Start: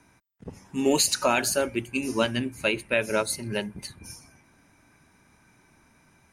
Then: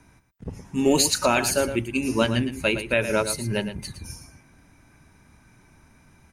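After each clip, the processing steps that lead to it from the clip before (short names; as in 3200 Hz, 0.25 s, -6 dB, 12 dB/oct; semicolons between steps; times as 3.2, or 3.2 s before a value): low shelf 120 Hz +11.5 dB; on a send: echo 0.113 s -10.5 dB; on the sum: gain +1.5 dB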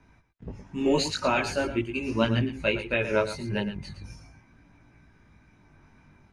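LPF 4000 Hz 12 dB/oct; chorus voices 2, 0.42 Hz, delay 19 ms, depth 1.7 ms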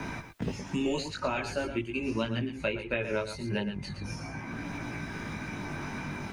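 three-band squash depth 100%; gain -4.5 dB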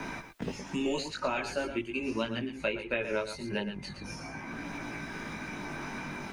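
bell 91 Hz -10.5 dB 1.5 oct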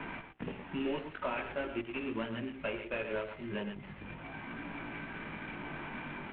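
CVSD 16 kbps; de-hum 63.77 Hz, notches 13; gain -3 dB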